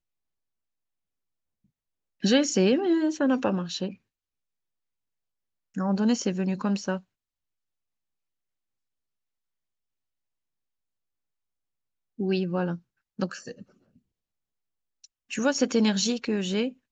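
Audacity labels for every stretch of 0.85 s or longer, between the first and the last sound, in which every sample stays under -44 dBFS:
3.940000	5.750000	silence
7.000000	12.190000	silence
13.620000	15.040000	silence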